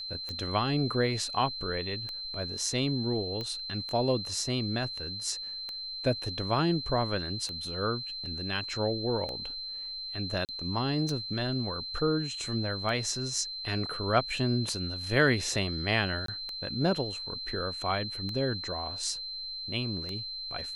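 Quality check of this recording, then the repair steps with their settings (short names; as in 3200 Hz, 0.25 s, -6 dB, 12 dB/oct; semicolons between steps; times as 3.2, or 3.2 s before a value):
tick 33 1/3 rpm -23 dBFS
tone 4100 Hz -36 dBFS
3.41 pop -23 dBFS
10.45–10.49 gap 38 ms
16.26–16.28 gap 23 ms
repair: de-click; notch 4100 Hz, Q 30; interpolate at 10.45, 38 ms; interpolate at 16.26, 23 ms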